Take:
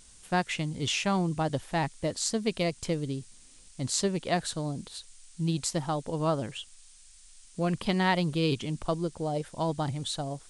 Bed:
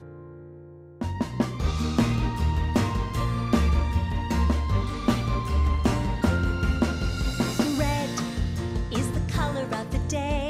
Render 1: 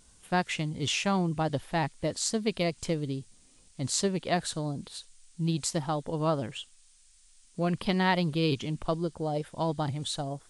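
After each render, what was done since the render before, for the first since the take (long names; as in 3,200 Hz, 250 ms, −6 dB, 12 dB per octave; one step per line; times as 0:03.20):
noise reduction from a noise print 6 dB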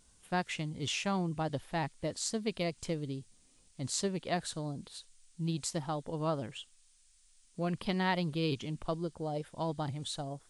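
level −5.5 dB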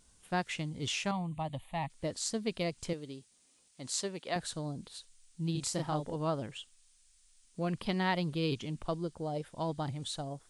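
0:01.11–0:01.90: phaser with its sweep stopped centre 1,500 Hz, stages 6
0:02.93–0:04.36: high-pass filter 420 Hz 6 dB per octave
0:05.52–0:06.16: double-tracking delay 33 ms −2.5 dB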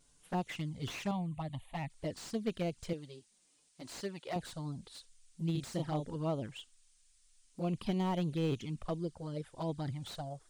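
flanger swept by the level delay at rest 7.5 ms, full sweep at −30 dBFS
slew-rate limiting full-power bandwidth 26 Hz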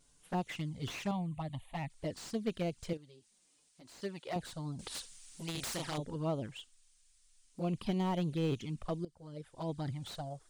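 0:02.97–0:04.02: downward compressor 2 to 1, threshold −60 dBFS
0:04.79–0:05.98: every bin compressed towards the loudest bin 2 to 1
0:09.05–0:09.80: fade in, from −17 dB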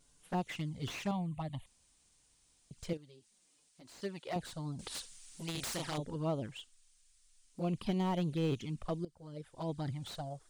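0:01.66–0:02.71: fill with room tone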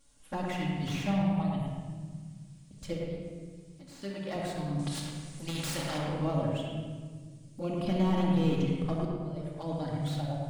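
on a send: bucket-brigade delay 108 ms, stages 2,048, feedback 36%, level −3 dB
on the sum: rectangular room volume 2,000 cubic metres, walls mixed, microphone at 2.3 metres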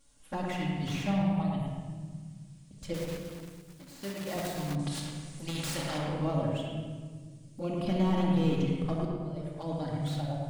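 0:02.94–0:04.77: one scale factor per block 3 bits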